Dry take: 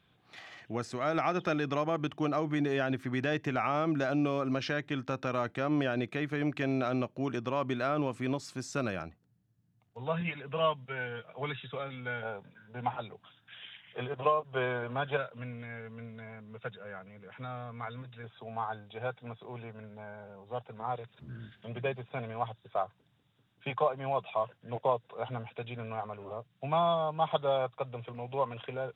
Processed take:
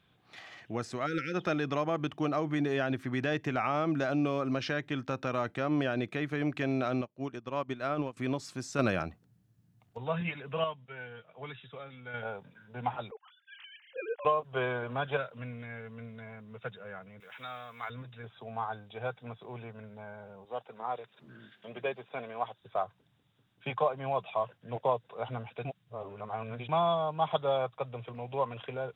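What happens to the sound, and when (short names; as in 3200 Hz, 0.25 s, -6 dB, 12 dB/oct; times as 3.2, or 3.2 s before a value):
1.06–1.34 spectral delete 540–1300 Hz
7.01–8.17 upward expander 2.5:1, over -40 dBFS
8.79–9.98 gain +5.5 dB
10.64–12.14 gain -7 dB
13.11–14.25 sine-wave speech
17.2–17.9 tilt +4.5 dB/oct
20.45–22.61 HPF 260 Hz
25.65–26.69 reverse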